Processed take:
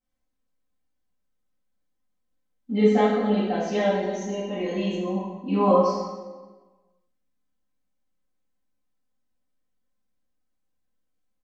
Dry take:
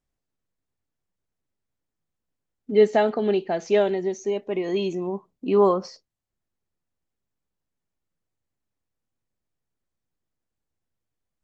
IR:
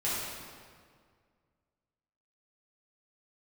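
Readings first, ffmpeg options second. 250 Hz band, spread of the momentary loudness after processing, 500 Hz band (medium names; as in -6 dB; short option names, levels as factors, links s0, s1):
+4.0 dB, 12 LU, -2.5 dB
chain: -filter_complex "[0:a]aecho=1:1:3.9:0.86[s0];[1:a]atrim=start_sample=2205,asetrate=70560,aresample=44100[s1];[s0][s1]afir=irnorm=-1:irlink=0,volume=0.562"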